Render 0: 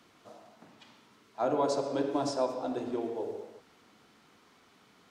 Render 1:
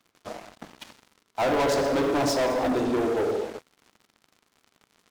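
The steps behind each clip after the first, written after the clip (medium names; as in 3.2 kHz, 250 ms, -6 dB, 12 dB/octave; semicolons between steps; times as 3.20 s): waveshaping leveller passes 5; trim -3.5 dB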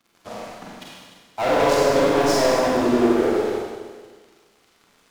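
Schroeder reverb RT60 1.5 s, combs from 33 ms, DRR -4.5 dB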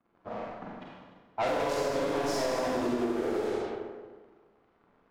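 level-controlled noise filter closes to 1.1 kHz, open at -17.5 dBFS; compression 10:1, threshold -23 dBFS, peak gain reduction 11 dB; trim -3 dB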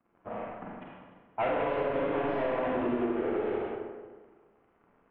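steep low-pass 3 kHz 48 dB/octave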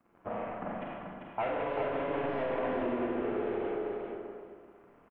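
compression 2.5:1, threshold -38 dBFS, peak gain reduction 8.5 dB; on a send: feedback delay 393 ms, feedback 16%, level -5 dB; on the sum: trim +4 dB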